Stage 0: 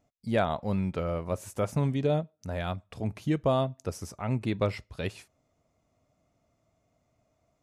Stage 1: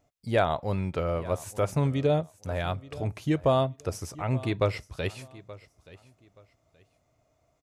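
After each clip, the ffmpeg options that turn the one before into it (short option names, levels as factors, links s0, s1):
-af "equalizer=f=210:w=3.4:g=-9.5,aecho=1:1:876|1752:0.112|0.0281,volume=1.41"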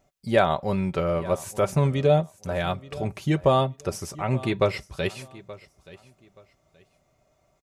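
-af "aecho=1:1:5.2:0.47,volume=1.5"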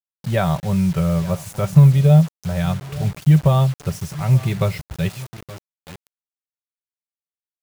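-af "lowshelf=f=210:t=q:w=3:g=8.5,acrusher=bits=5:mix=0:aa=0.000001,volume=0.891"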